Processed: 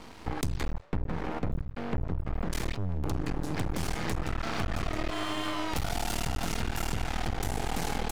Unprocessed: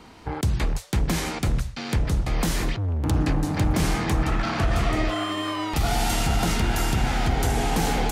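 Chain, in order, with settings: 0.72–2.53 LPF 1300 Hz 12 dB/oct; half-wave rectifier; compressor 6:1, threshold -29 dBFS, peak gain reduction 10.5 dB; gain +3 dB

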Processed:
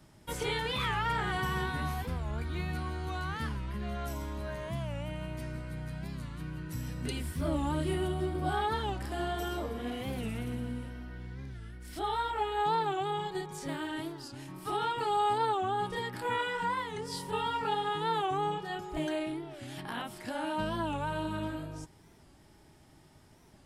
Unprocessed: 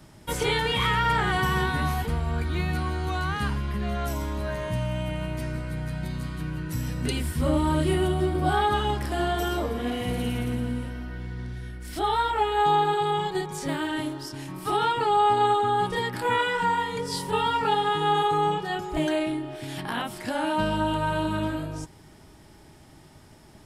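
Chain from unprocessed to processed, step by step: 14.98–15.38 high shelf 4600 Hz +7 dB; record warp 45 rpm, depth 160 cents; gain -8 dB

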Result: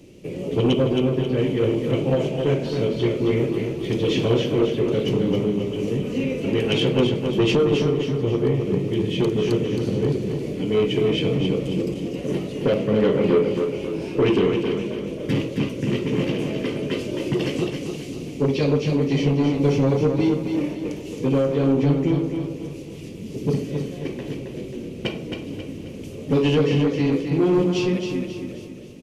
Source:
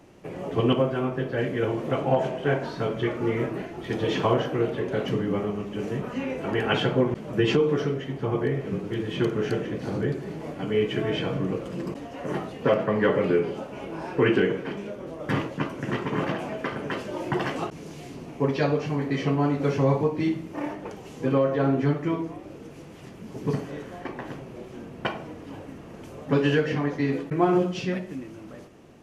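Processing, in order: band shelf 1100 Hz -16 dB; soft clip -19.5 dBFS, distortion -14 dB; feedback echo 0.269 s, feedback 42%, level -6 dB; gain +6.5 dB

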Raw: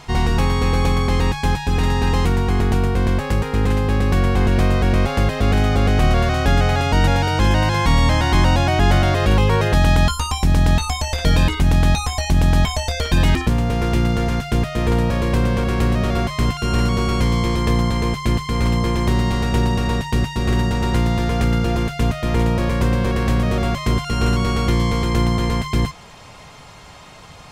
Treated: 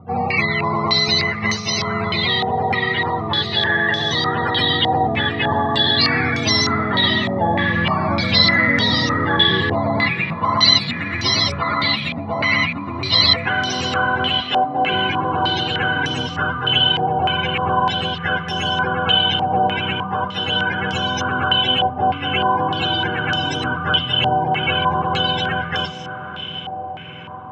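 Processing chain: spectrum mirrored in octaves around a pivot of 420 Hz; 14.41–14.94 HPF 160 Hz 24 dB/oct; on a send: diffused feedback echo 0.615 s, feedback 70%, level -13.5 dB; on the sum: stepped low-pass 3.3 Hz 770–5700 Hz; gain -1 dB

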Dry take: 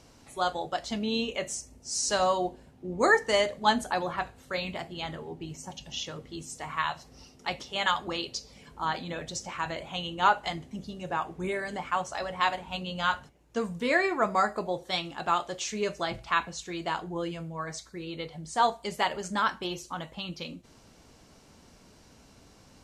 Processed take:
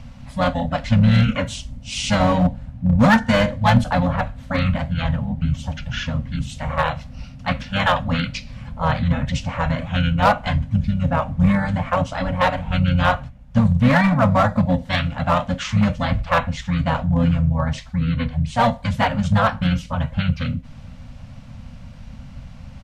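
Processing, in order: harmoniser -12 st -1 dB, -4 st -8 dB, -3 st -7 dB; tone controls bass +13 dB, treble -10 dB; in parallel at -4.5 dB: wavefolder -16 dBFS; on the sum: Chebyshev band-stop 260–520 Hz, order 3; gain +2.5 dB

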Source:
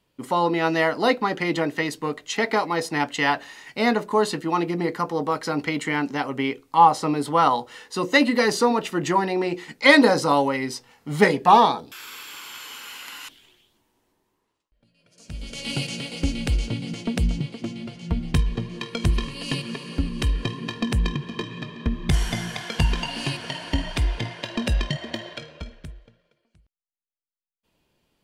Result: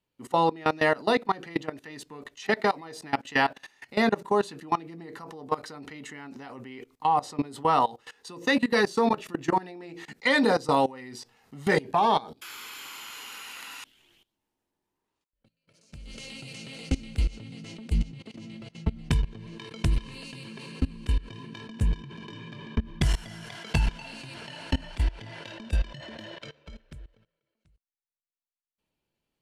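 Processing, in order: level quantiser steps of 21 dB; varispeed -4%

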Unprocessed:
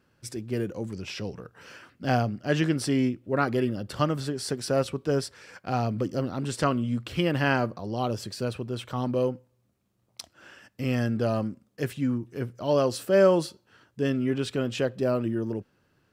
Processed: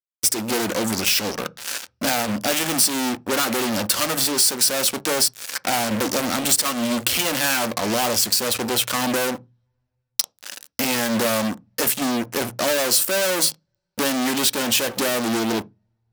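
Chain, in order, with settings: fuzz box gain 37 dB, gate -45 dBFS; RIAA curve recording; compressor 2.5:1, threshold -17 dBFS, peak gain reduction 9.5 dB; 6.34–6.93 transient shaper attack +1 dB, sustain -8 dB; on a send: reverb RT60 0.20 s, pre-delay 3 ms, DRR 15 dB; on the sum: gain -1.5 dB

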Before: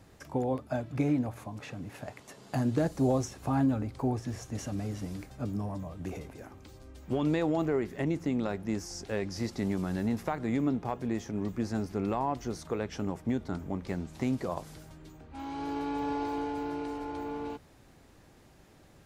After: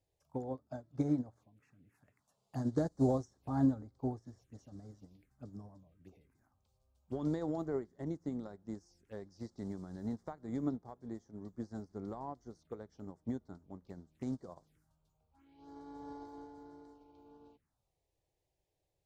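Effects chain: envelope phaser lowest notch 190 Hz, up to 2600 Hz, full sweep at -32 dBFS; upward expander 2.5:1, over -39 dBFS; gain -1 dB

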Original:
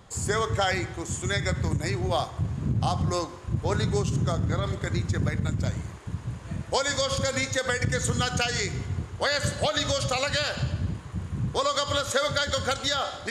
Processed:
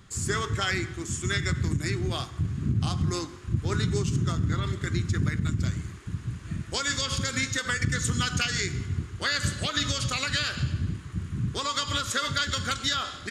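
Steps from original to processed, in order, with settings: band shelf 680 Hz -12.5 dB 1.3 oct; harmoniser -4 st -14 dB

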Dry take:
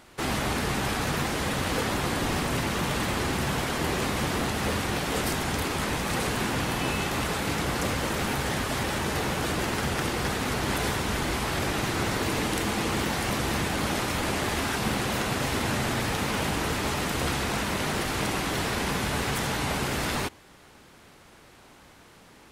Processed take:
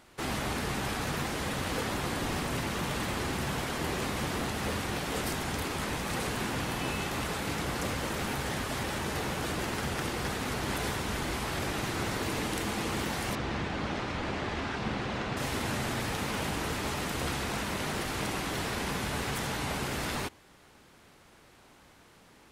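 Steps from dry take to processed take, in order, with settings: 13.35–15.37 air absorption 140 m; gain -5 dB

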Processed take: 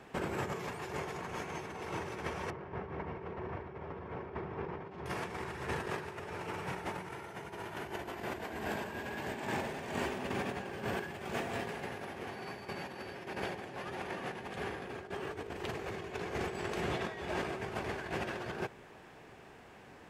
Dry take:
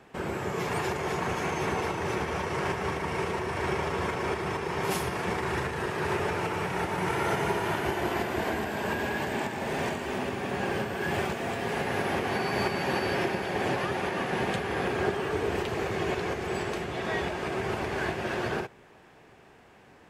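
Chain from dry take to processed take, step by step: negative-ratio compressor -34 dBFS, ratio -0.5; 2.5–5.06 tape spacing loss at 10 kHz 43 dB; gain -4.5 dB

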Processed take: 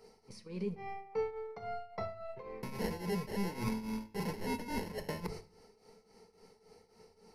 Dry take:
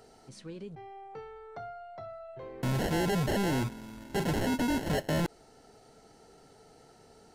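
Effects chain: notches 50/100/150 Hz; gate -46 dBFS, range -13 dB; ripple EQ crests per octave 0.86, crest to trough 11 dB; reverse; compressor 12:1, threshold -41 dBFS, peak gain reduction 18.5 dB; reverse; tremolo triangle 3.6 Hz, depth 85%; on a send: reverb RT60 0.45 s, pre-delay 5 ms, DRR 9.5 dB; on the sum: gain +9.5 dB

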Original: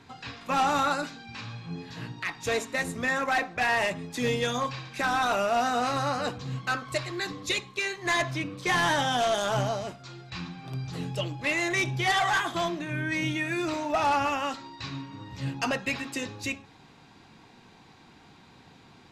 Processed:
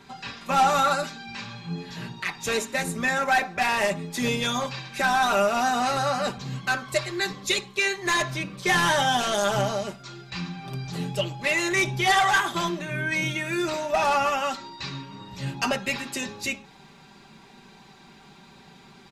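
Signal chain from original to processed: high shelf 9000 Hz +7 dB; comb 5.1 ms, depth 72%; gain +1.5 dB

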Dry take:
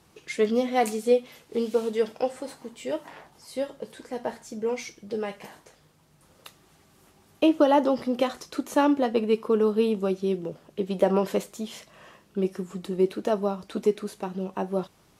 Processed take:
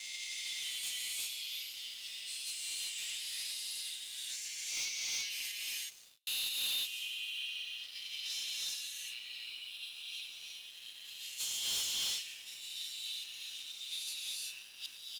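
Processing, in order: spectral swells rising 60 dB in 1.73 s; dynamic EQ 3600 Hz, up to +4 dB, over -43 dBFS, Q 1.4; negative-ratio compressor -22 dBFS, ratio -0.5; comb 7.2 ms, depth 60%; limiter -19 dBFS, peak gain reduction 10.5 dB; level quantiser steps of 21 dB; feedback echo 0.191 s, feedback 33%, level -20 dB; gate with hold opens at -49 dBFS; steep high-pass 2600 Hz 36 dB/oct; non-linear reverb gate 0.4 s rising, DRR -3 dB; sample leveller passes 3; gain -1 dB

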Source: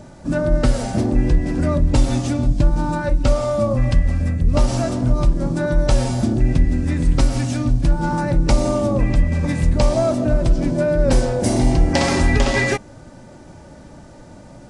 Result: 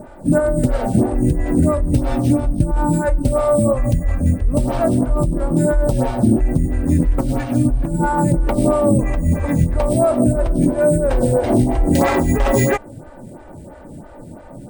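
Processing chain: LPF 1400 Hz 6 dB/oct; in parallel at +1 dB: negative-ratio compressor -19 dBFS; on the sum: sample-and-hold 5×; photocell phaser 3 Hz

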